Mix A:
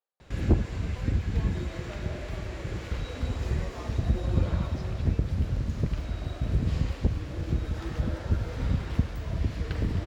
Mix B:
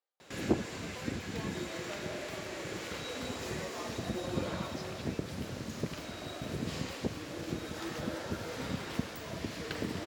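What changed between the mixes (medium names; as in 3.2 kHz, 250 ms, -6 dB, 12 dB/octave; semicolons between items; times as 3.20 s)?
background: add high-pass 240 Hz 12 dB/octave; master: add treble shelf 4.8 kHz +9.5 dB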